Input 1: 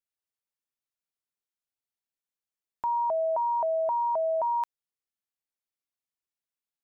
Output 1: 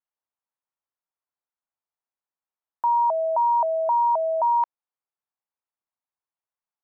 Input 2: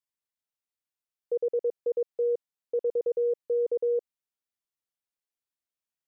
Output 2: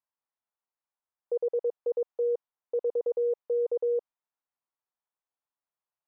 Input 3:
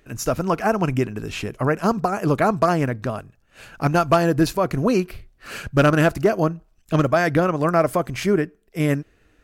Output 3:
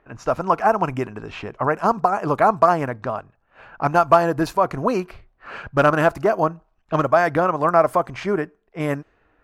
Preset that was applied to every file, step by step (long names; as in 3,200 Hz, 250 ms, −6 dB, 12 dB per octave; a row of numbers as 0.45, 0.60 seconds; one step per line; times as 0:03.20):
low-pass that shuts in the quiet parts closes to 2,200 Hz, open at −16 dBFS
parametric band 930 Hz +13.5 dB 1.6 octaves
level −6.5 dB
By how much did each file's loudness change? +5.5, −1.0, +0.5 LU